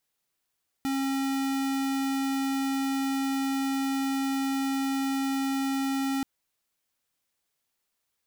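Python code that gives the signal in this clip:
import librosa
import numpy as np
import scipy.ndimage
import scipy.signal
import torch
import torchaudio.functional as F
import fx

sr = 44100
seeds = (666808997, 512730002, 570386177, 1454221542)

y = fx.tone(sr, length_s=5.38, wave='square', hz=271.0, level_db=-28.0)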